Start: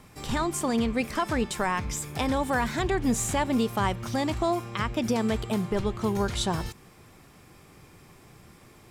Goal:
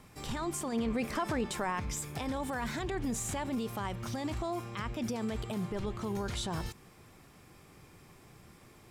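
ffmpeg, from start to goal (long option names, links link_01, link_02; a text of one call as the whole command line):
ffmpeg -i in.wav -filter_complex "[0:a]alimiter=limit=-23dB:level=0:latency=1:release=25,asettb=1/sr,asplit=3[link_01][link_02][link_03];[link_01]atrim=end=0.724[link_04];[link_02]atrim=start=0.72:end=1.8,asetpts=PTS-STARTPTS,afade=type=in:duration=0.004:curve=qsin,afade=type=out:start_time=1.076:duration=0.004:curve=qsin,equalizer=frequency=540:width=0.31:gain=4.5[link_05];[link_03]atrim=start=1.796[link_06];[link_04][link_05]acrossfade=duration=0.004:curve1=hsin:curve2=qsin[link_07];[link_07][link_06]acrossfade=duration=0.004:curve1=qsin:curve2=hsin,volume=-4dB" out.wav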